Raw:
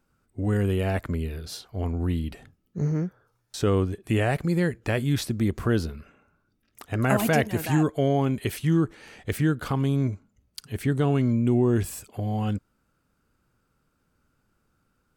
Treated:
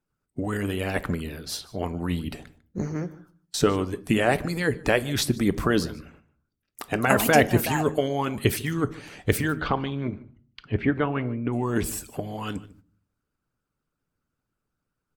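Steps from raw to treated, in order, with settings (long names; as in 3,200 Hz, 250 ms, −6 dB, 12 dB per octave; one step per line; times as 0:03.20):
0:09.47–0:11.52: low-pass filter 4,200 Hz → 2,200 Hz 24 dB per octave
noise gate −57 dBFS, range −14 dB
single-tap delay 149 ms −19.5 dB
harmonic and percussive parts rebalanced harmonic −16 dB
rectangular room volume 380 cubic metres, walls furnished, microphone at 0.39 metres
level +7.5 dB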